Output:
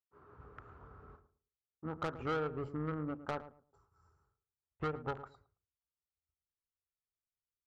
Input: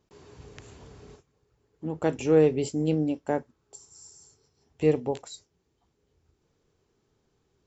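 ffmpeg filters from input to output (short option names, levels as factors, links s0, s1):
-filter_complex "[0:a]agate=range=0.0224:threshold=0.00398:ratio=3:detection=peak,asubboost=boost=5:cutoff=110,acompressor=threshold=0.0501:ratio=8,aeval=exprs='0.119*(cos(1*acos(clip(val(0)/0.119,-1,1)))-cos(1*PI/2))+0.0266*(cos(3*acos(clip(val(0)/0.119,-1,1)))-cos(3*PI/2))':c=same,lowpass=f=1300:t=q:w=8.1,asoftclip=type=tanh:threshold=0.0316,asplit=2[s0][s1];[s1]adelay=110,lowpass=f=930:p=1,volume=0.251,asplit=2[s2][s3];[s3]adelay=110,lowpass=f=930:p=1,volume=0.24,asplit=2[s4][s5];[s5]adelay=110,lowpass=f=930:p=1,volume=0.24[s6];[s2][s4][s6]amix=inputs=3:normalize=0[s7];[s0][s7]amix=inputs=2:normalize=0"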